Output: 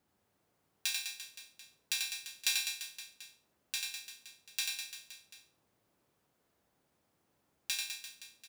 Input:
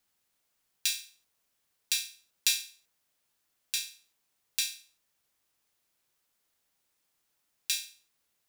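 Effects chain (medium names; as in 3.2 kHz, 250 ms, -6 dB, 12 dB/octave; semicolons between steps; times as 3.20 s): high-pass 68 Hz; tilt shelf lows +10 dB, about 1.3 kHz; on a send: reverse bouncing-ball echo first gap 90 ms, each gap 1.25×, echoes 5; on the sum: trim +2.5 dB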